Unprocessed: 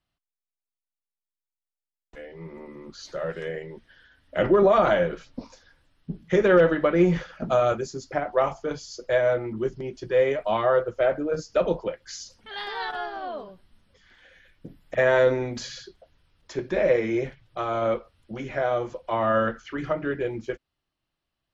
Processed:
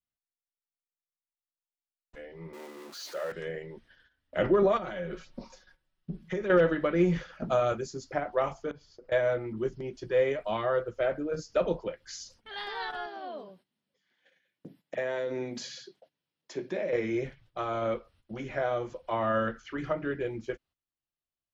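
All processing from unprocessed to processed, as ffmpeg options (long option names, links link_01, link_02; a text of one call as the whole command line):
ffmpeg -i in.wav -filter_complex "[0:a]asettb=1/sr,asplit=3[link_01][link_02][link_03];[link_01]atrim=end=2.534[link_04];[link_02]atrim=start=2.53:end=3.32,asetpts=PTS-STARTPTS,afade=type=in:duration=0.004:curve=qsin,afade=type=out:start_time=0.786:duration=0.004:curve=qsin,aeval=exprs='val(0)+0.5*0.0119*sgn(val(0))':channel_layout=same,highpass=380[link_05];[link_03]atrim=start=3.316[link_06];[link_04][link_05]acrossfade=duration=0.004:curve1=hsin:curve2=qsin[link_07];[link_07][link_06]acrossfade=duration=0.004:curve1=qsin:curve2=hsin,asettb=1/sr,asplit=3[link_08][link_09][link_10];[link_08]atrim=end=4.774[link_11];[link_09]atrim=start=4.77:end=6.5,asetpts=PTS-STARTPTS,afade=type=in:duration=0.004:curve=qsin,afade=type=out:start_time=1.726:duration=0.004:curve=qsin,acompressor=threshold=-28dB:ratio=5:attack=3.2:release=140:knee=1:detection=peak,aecho=1:1:5.4:0.55,atrim=end_sample=76293[link_12];[link_10]atrim=start=6.496[link_13];[link_11][link_12]acrossfade=duration=0.004:curve1=hsin:curve2=qsin[link_14];[link_14][link_13]acrossfade=duration=0.004:curve1=qsin:curve2=hsin,asettb=1/sr,asplit=3[link_15][link_16][link_17];[link_15]atrim=end=8.714[link_18];[link_16]atrim=start=8.71:end=9.12,asetpts=PTS-STARTPTS,afade=type=in:duration=0.004:curve=qsin,afade=type=out:start_time=0.406:duration=0.004:curve=qsin,lowpass=2100,acompressor=threshold=-41dB:ratio=5:attack=3.2:release=140:knee=1:detection=peak[link_19];[link_17]atrim=start=9.116[link_20];[link_18][link_19]acrossfade=duration=0.004:curve1=hsin:curve2=qsin[link_21];[link_21][link_20]acrossfade=duration=0.004:curve1=qsin:curve2=hsin,asettb=1/sr,asplit=3[link_22][link_23][link_24];[link_22]atrim=end=13.064[link_25];[link_23]atrim=start=13.06:end=16.93,asetpts=PTS-STARTPTS,afade=type=in:duration=0.004:curve=qsin,afade=type=out:start_time=3.866:duration=0.004:curve=qsin,highpass=frequency=150:width=0.5412,highpass=frequency=150:width=1.3066,equalizer=frequency=1300:width_type=o:width=0.78:gain=-5,acompressor=threshold=-23dB:ratio=6:attack=3.2:release=140:knee=1:detection=peak[link_26];[link_24]atrim=start=16.926[link_27];[link_25][link_26]acrossfade=duration=0.004:curve1=hsin:curve2=qsin[link_28];[link_28][link_27]acrossfade=duration=0.004:curve1=qsin:curve2=hsin,agate=range=-13dB:threshold=-54dB:ratio=16:detection=peak,adynamicequalizer=threshold=0.0178:dfrequency=800:dqfactor=0.99:tfrequency=800:tqfactor=0.99:attack=5:release=100:ratio=0.375:range=3.5:mode=cutabove:tftype=bell,volume=-4dB" out.wav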